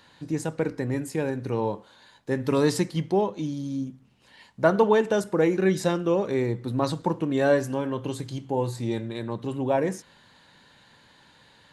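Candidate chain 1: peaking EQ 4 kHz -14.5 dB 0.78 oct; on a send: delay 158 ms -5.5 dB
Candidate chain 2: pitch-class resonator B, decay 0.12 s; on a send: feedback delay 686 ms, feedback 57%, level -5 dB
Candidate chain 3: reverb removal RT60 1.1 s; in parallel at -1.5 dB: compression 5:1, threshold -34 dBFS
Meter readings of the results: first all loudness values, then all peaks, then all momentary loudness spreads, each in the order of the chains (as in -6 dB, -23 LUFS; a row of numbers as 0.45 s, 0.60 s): -25.5 LUFS, -35.5 LUFS, -25.5 LUFS; -4.5 dBFS, -17.5 dBFS, -4.5 dBFS; 11 LU, 11 LU, 10 LU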